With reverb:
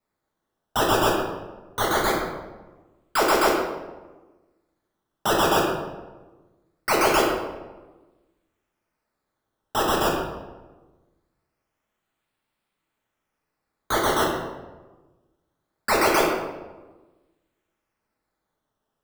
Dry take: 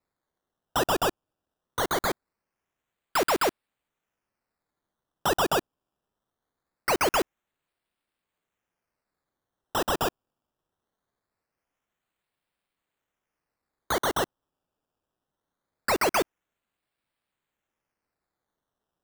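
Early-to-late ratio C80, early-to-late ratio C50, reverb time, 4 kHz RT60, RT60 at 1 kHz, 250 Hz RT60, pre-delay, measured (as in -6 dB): 4.0 dB, 2.0 dB, 1.2 s, 0.75 s, 1.1 s, 1.4 s, 4 ms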